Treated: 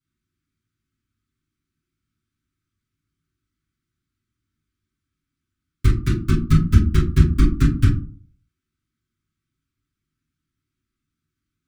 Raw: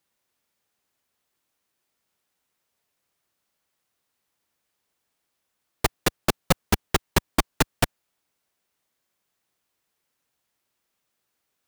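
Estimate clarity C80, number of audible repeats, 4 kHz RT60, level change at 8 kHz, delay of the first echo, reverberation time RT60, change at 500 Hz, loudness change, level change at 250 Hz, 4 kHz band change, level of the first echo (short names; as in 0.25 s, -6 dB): 13.5 dB, none, 0.20 s, -10.5 dB, none, 0.45 s, -4.5 dB, +6.5 dB, +8.5 dB, -8.0 dB, none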